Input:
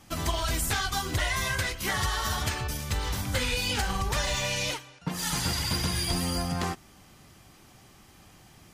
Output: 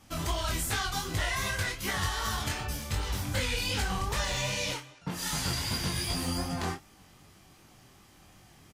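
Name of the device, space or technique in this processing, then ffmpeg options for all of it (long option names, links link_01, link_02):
double-tracked vocal: -filter_complex "[0:a]asplit=2[link_01][link_02];[link_02]adelay=31,volume=-9.5dB[link_03];[link_01][link_03]amix=inputs=2:normalize=0,flanger=delay=18.5:depth=5.5:speed=2.6"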